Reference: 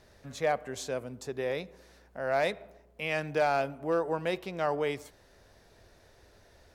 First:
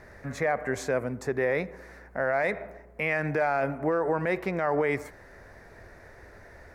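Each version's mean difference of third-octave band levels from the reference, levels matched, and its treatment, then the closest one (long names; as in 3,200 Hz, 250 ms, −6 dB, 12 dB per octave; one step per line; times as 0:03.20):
5.0 dB: high shelf with overshoot 2,500 Hz −7.5 dB, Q 3
brickwall limiter −26 dBFS, peak gain reduction 11 dB
level +9 dB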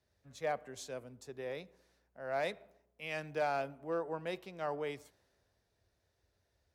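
3.5 dB: high-pass filter 63 Hz
multiband upward and downward expander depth 40%
level −8.5 dB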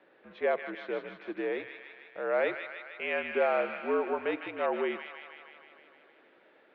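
9.5 dB: delay with a high-pass on its return 155 ms, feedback 69%, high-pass 1,600 Hz, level −4 dB
single-sideband voice off tune −64 Hz 320–3,100 Hz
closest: second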